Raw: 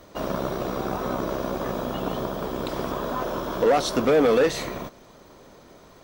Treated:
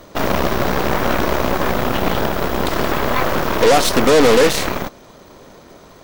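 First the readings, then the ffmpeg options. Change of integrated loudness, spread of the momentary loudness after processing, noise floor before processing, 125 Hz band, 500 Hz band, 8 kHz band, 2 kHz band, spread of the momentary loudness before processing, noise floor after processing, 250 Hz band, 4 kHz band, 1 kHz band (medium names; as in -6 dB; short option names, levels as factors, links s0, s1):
+8.5 dB, 8 LU, -51 dBFS, +10.0 dB, +7.0 dB, +13.0 dB, +13.0 dB, 10 LU, -44 dBFS, +7.5 dB, +12.5 dB, +9.5 dB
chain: -af "acontrast=82,aeval=exprs='0.501*(cos(1*acos(clip(val(0)/0.501,-1,1)))-cos(1*PI/2))+0.141*(cos(8*acos(clip(val(0)/0.501,-1,1)))-cos(8*PI/2))':c=same"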